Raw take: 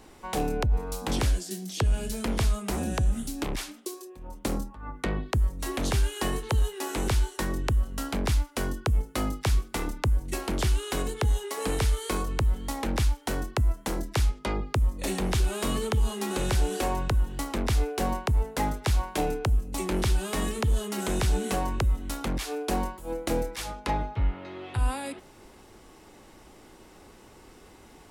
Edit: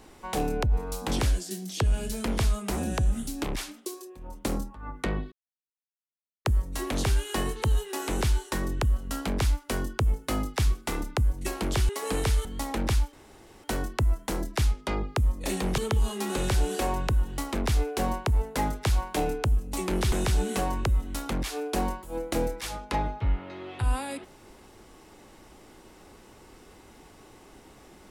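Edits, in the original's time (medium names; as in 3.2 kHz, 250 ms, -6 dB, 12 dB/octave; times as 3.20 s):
5.32 s: insert silence 1.13 s
10.76–11.44 s: delete
12.00–12.54 s: delete
13.22 s: insert room tone 0.51 s
15.36–15.79 s: delete
20.13–21.07 s: delete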